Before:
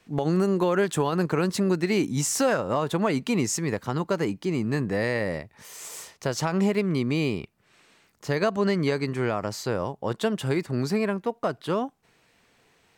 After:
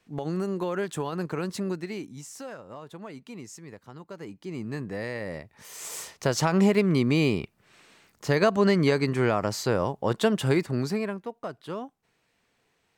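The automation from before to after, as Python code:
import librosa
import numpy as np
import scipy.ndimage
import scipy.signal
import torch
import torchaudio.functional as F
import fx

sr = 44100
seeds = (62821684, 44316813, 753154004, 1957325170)

y = fx.gain(x, sr, db=fx.line((1.68, -6.5), (2.23, -17.0), (4.06, -17.0), (4.62, -7.5), (5.2, -7.5), (5.93, 2.5), (10.55, 2.5), (11.32, -8.5)))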